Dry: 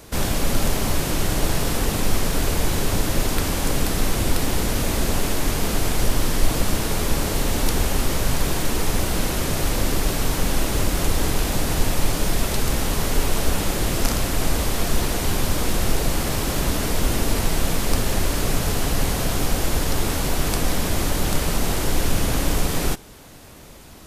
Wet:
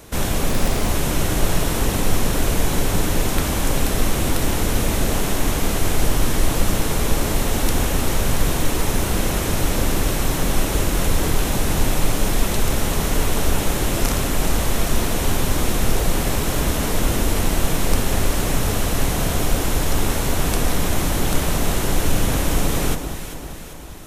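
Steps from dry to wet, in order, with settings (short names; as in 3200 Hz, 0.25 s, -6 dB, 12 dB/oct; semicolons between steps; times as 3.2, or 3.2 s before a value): bell 4700 Hz -5 dB 0.25 oct; echo with dull and thin repeats by turns 0.196 s, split 1300 Hz, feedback 73%, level -7 dB; 0.49–0.89 Doppler distortion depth 0.68 ms; gain +1 dB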